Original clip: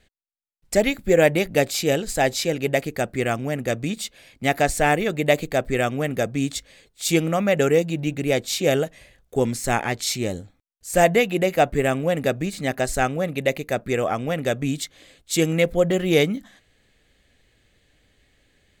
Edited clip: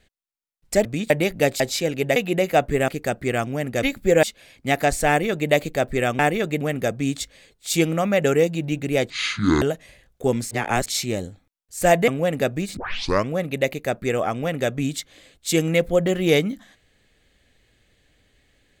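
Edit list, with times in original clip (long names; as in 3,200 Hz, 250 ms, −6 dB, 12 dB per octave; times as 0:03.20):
0:00.85–0:01.25: swap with 0:03.75–0:04.00
0:01.75–0:02.24: remove
0:04.85–0:05.27: duplicate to 0:05.96
0:08.45–0:08.74: play speed 56%
0:09.63–0:09.98: reverse
0:11.20–0:11.92: move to 0:02.80
0:12.61: tape start 0.53 s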